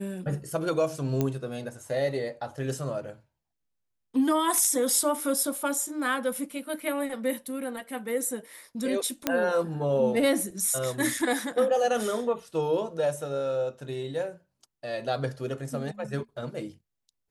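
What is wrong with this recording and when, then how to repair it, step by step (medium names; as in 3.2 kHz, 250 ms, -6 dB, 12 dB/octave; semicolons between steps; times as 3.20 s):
1.21 s: pop -13 dBFS
9.27 s: pop -8 dBFS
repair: de-click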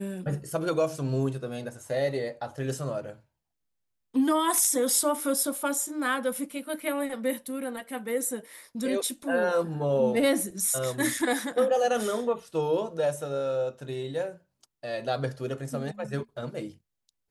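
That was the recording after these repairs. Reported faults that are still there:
nothing left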